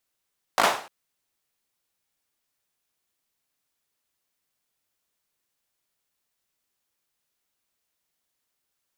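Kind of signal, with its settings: hand clap length 0.30 s, apart 18 ms, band 830 Hz, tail 0.44 s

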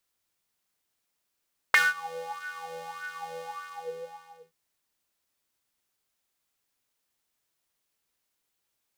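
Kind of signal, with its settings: synth patch with filter wobble E3, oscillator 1 square, oscillator 2 square, interval 0 st, filter highpass, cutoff 520 Hz, Q 10, filter envelope 2 oct, filter decay 0.08 s, attack 2 ms, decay 0.19 s, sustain -22.5 dB, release 1.11 s, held 1.67 s, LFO 1.7 Hz, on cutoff 0.7 oct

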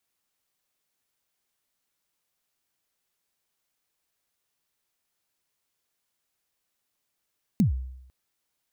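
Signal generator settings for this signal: kick drum length 0.50 s, from 240 Hz, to 64 Hz, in 0.12 s, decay 0.81 s, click on, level -15 dB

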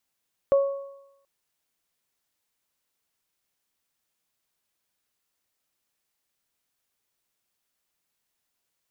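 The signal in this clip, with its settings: additive tone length 0.73 s, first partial 554 Hz, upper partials -17 dB, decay 0.83 s, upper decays 1.03 s, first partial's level -14 dB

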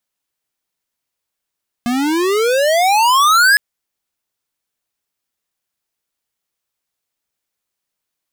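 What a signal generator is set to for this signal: gliding synth tone square, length 1.71 s, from 234 Hz, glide +34.5 st, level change +7.5 dB, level -9.5 dB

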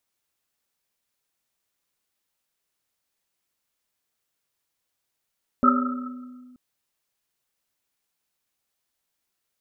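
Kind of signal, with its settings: Risset drum length 0.93 s, pitch 250 Hz, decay 1.98 s, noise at 1300 Hz, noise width 100 Hz, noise 45%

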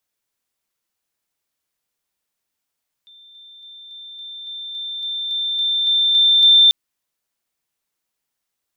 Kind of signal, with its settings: level ladder 3570 Hz -43.5 dBFS, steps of 3 dB, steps 13, 0.28 s 0.00 s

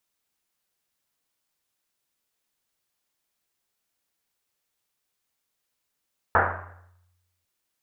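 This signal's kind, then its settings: Risset drum, pitch 89 Hz, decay 1.25 s, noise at 1100 Hz, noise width 1200 Hz, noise 75%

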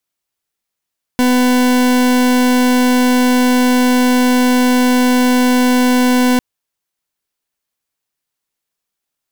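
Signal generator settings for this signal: pulse 250 Hz, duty 40% -11.5 dBFS 5.20 s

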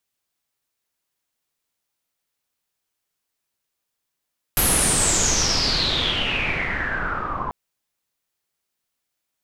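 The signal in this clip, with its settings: swept filtered noise pink, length 2.94 s lowpass, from 12000 Hz, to 1000 Hz, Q 9, exponential, gain ramp -10 dB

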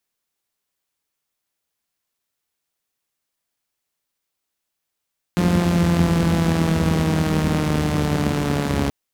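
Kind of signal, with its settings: four-cylinder engine model, changing speed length 3.53 s, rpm 5300, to 4200, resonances 85/180 Hz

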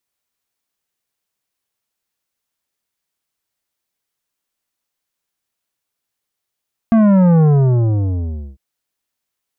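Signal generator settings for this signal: sub drop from 230 Hz, over 1.65 s, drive 11 dB, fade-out 1.15 s, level -9 dB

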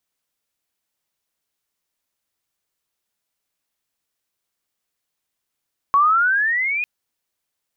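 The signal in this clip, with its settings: chirp logarithmic 1100 Hz -> 2500 Hz -11 dBFS -> -20 dBFS 0.90 s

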